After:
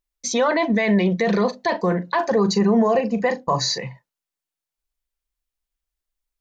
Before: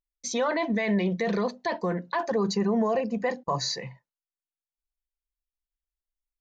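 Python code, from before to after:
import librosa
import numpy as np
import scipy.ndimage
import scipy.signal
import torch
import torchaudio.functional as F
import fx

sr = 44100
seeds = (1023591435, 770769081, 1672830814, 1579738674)

y = fx.doubler(x, sr, ms=39.0, db=-13.0, at=(1.26, 3.78))
y = y * 10.0 ** (7.0 / 20.0)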